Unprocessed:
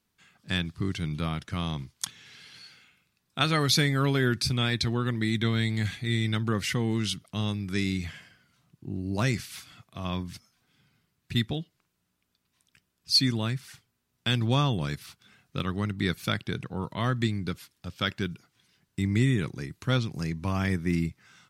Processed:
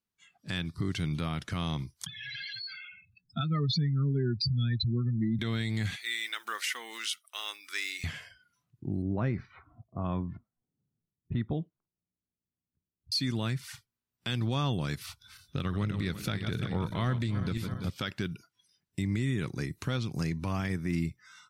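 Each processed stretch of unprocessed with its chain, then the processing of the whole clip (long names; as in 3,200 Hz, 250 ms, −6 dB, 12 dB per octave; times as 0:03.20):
0:02.06–0:05.39: expanding power law on the bin magnitudes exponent 3 + multiband upward and downward compressor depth 40%
0:05.96–0:08.04: one scale factor per block 7 bits + high-pass filter 1,300 Hz + dynamic equaliser 4,600 Hz, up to −5 dB, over −48 dBFS, Q 1.4
0:09.02–0:13.12: low-pass filter 1,300 Hz + low-pass that shuts in the quiet parts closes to 430 Hz, open at −28.5 dBFS
0:15.04–0:17.90: feedback delay that plays each chunk backwards 169 ms, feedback 59%, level −11 dB + low-shelf EQ 110 Hz +9.5 dB + highs frequency-modulated by the lows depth 0.1 ms
whole clip: noise reduction from a noise print of the clip's start 18 dB; downward compressor 2.5 to 1, threshold −32 dBFS; brickwall limiter −24.5 dBFS; level +3.5 dB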